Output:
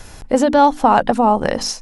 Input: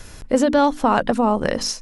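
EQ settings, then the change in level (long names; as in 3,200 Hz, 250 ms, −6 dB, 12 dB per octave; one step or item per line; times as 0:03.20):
parametric band 800 Hz +7.5 dB 0.43 octaves
+1.5 dB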